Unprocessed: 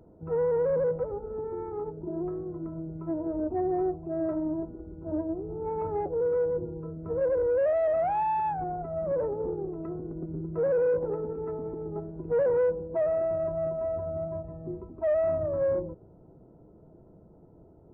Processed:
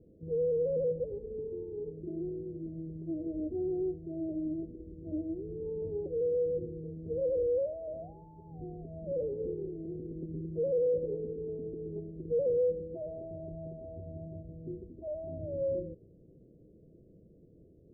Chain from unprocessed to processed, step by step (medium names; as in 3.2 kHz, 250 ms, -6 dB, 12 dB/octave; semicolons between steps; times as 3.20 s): rattle on loud lows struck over -38 dBFS, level -36 dBFS; elliptic low-pass 530 Hz, stop band 60 dB; trim -3.5 dB